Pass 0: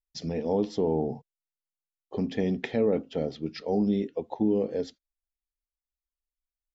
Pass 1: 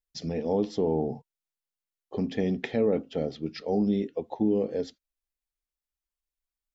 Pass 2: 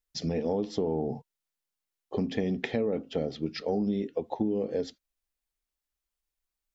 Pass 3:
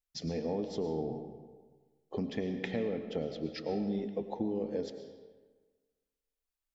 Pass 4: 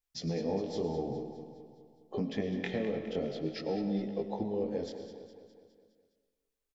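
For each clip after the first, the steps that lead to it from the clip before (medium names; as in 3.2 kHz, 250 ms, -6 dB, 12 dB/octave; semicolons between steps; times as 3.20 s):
band-stop 940 Hz, Q 23
compression, threshold -28 dBFS, peak gain reduction 8 dB; trim +3 dB
reverberation RT60 1.4 s, pre-delay 70 ms, DRR 7.5 dB; trim -5.5 dB
chorus 0.51 Hz, delay 16 ms, depth 7.6 ms; on a send: feedback delay 206 ms, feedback 56%, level -12 dB; on the sum: trim +4 dB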